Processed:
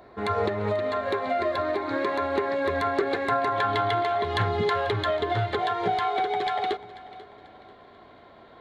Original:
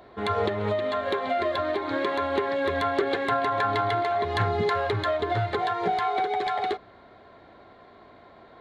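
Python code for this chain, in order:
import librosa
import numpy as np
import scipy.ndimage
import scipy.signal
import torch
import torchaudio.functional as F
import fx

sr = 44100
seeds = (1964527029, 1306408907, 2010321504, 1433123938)

y = fx.peak_eq(x, sr, hz=3200.0, db=fx.steps((0.0, -7.5), (3.56, 4.5)), octaves=0.32)
y = fx.echo_feedback(y, sr, ms=490, feedback_pct=38, wet_db=-18.0)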